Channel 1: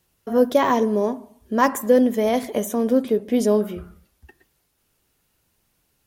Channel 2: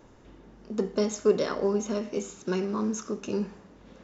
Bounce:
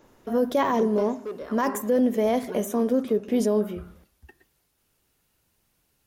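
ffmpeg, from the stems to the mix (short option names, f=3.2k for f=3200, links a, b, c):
-filter_complex "[0:a]adynamicequalizer=threshold=0.0158:dfrequency=1900:dqfactor=0.7:tfrequency=1900:tqfactor=0.7:attack=5:release=100:ratio=0.375:range=2.5:mode=cutabove:tftype=highshelf,volume=-2dB[a];[1:a]acrossover=split=2800[b][c];[c]acompressor=threshold=-55dB:ratio=4:attack=1:release=60[d];[b][d]amix=inputs=2:normalize=0,equalizer=f=63:w=0.37:g=-7,asoftclip=type=hard:threshold=-20dB,volume=-0.5dB,afade=t=out:st=0.93:d=0.3:silence=0.398107[e];[a][e]amix=inputs=2:normalize=0,alimiter=limit=-14dB:level=0:latency=1:release=12"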